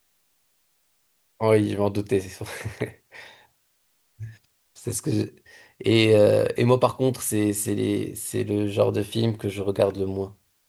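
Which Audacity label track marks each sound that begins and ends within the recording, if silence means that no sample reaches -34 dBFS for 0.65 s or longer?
1.410000	3.250000	sound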